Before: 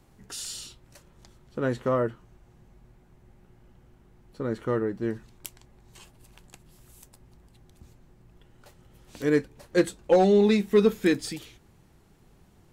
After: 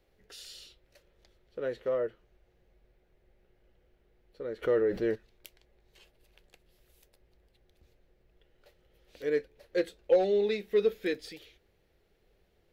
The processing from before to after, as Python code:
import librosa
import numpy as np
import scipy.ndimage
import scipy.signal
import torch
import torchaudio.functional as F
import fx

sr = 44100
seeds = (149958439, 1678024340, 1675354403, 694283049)

y = fx.graphic_eq(x, sr, hz=(125, 250, 500, 1000, 2000, 4000, 8000), db=(-10, -9, 10, -10, 4, 4, -11))
y = fx.env_flatten(y, sr, amount_pct=50, at=(4.62, 5.14), fade=0.02)
y = y * 10.0 ** (-8.5 / 20.0)